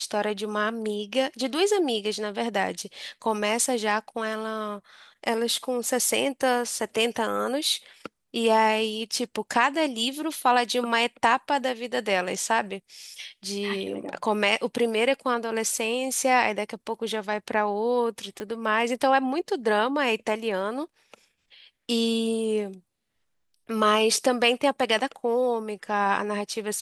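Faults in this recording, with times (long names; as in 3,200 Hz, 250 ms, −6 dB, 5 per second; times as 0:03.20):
0:18.40: click −20 dBFS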